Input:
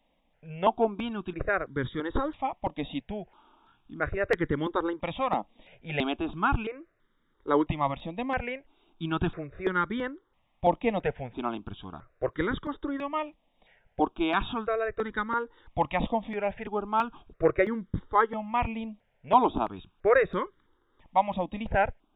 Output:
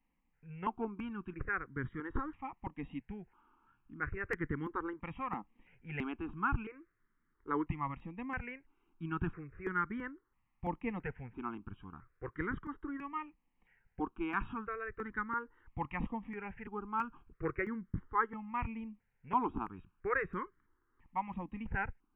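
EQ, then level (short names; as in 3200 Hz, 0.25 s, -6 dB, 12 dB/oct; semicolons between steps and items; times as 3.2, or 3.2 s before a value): fixed phaser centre 1500 Hz, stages 4; -6.0 dB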